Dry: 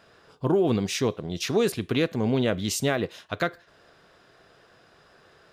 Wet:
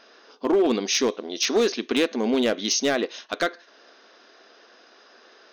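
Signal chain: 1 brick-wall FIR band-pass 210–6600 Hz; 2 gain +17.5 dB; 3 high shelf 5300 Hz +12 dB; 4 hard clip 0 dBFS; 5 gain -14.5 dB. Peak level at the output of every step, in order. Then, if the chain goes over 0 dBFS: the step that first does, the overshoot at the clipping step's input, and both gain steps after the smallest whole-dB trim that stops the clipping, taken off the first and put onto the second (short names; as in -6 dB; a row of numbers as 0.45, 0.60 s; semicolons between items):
-10.5, +7.0, +8.5, 0.0, -14.5 dBFS; step 2, 8.5 dB; step 2 +8.5 dB, step 5 -5.5 dB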